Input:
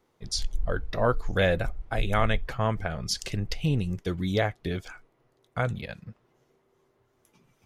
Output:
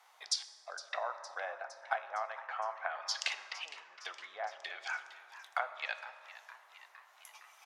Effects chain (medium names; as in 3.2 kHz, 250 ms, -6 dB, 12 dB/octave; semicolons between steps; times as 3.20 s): low-pass that closes with the level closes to 1.1 kHz, closed at -23 dBFS; compression 6:1, threshold -39 dBFS, peak gain reduction 19 dB; Chebyshev high-pass 730 Hz, order 4; frequency-shifting echo 461 ms, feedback 63%, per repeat +130 Hz, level -15.5 dB; on a send at -9 dB: reverberation RT60 2.2 s, pre-delay 3 ms; on the sum: trim +11 dB